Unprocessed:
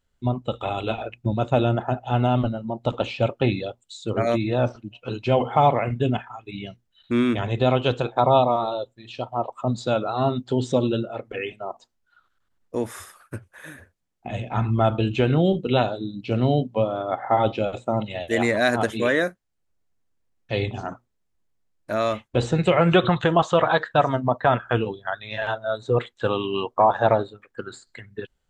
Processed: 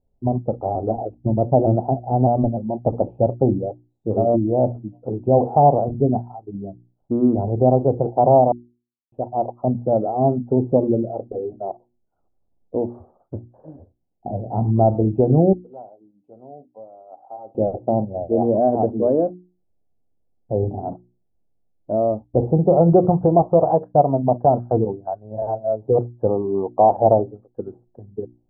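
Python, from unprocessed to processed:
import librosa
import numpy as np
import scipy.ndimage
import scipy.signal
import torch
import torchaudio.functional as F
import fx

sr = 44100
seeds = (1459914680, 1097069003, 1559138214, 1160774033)

y = fx.vibrato_shape(x, sr, shape='saw_up', rate_hz=3.3, depth_cents=100.0, at=(0.75, 3.06))
y = fx.differentiator(y, sr, at=(15.53, 17.55))
y = fx.edit(y, sr, fx.silence(start_s=8.52, length_s=0.6), tone=tone)
y = scipy.signal.sosfilt(scipy.signal.ellip(4, 1.0, 60, 780.0, 'lowpass', fs=sr, output='sos'), y)
y = fx.hum_notches(y, sr, base_hz=60, count=6)
y = y * librosa.db_to_amplitude(5.5)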